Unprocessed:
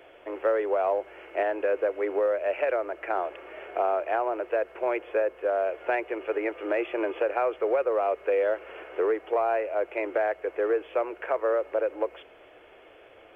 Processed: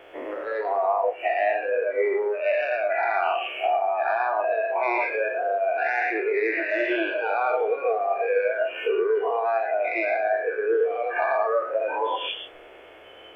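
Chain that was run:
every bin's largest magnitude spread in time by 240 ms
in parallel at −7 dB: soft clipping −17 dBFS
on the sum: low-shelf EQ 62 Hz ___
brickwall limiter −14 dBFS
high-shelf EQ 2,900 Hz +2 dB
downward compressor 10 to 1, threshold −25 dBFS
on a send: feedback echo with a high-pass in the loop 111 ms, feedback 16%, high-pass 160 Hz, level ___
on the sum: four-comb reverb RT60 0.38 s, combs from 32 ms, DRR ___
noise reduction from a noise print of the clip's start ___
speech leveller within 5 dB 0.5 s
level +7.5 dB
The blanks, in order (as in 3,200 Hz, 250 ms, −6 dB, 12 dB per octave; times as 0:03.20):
−3 dB, −6 dB, 18 dB, 17 dB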